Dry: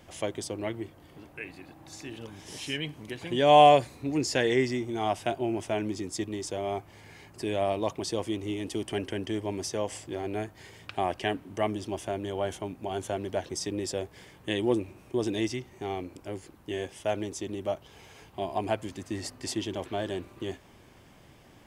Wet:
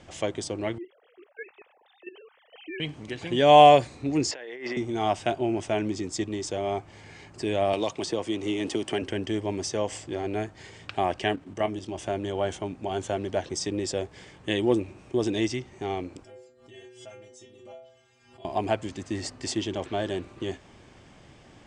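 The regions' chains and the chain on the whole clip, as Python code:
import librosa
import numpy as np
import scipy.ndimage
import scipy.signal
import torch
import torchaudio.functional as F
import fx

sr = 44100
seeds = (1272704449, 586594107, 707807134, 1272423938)

y = fx.chain(x, sr, fx.sine_speech(),
    fx.level_steps(step_db=13), at=(0.78, 2.8))
y = fx.chain(y, sr, fx.bandpass_edges(low_hz=510.0, high_hz=2400.0),
    fx.over_compress(threshold_db=-40.0, ratio=-1.0), at=(4.31, 4.77))
y = fx.chain(y, sr, fx.low_shelf(hz=120.0, db=-12.0),
    fx.band_squash(depth_pct=100), at=(7.73, 9.02))
y = fx.chain(y, sr, fx.level_steps(step_db=9),
    fx.doubler(ms=22.0, db=-12), at=(11.35, 11.99))
y = fx.chain(y, sr, fx.stiff_resonator(f0_hz=120.0, decay_s=0.81, stiffness=0.008),
    fx.pre_swell(db_per_s=76.0), at=(16.23, 18.45))
y = scipy.signal.sosfilt(scipy.signal.butter(8, 8700.0, 'lowpass', fs=sr, output='sos'), y)
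y = fx.notch(y, sr, hz=980.0, q=23.0)
y = F.gain(torch.from_numpy(y), 3.0).numpy()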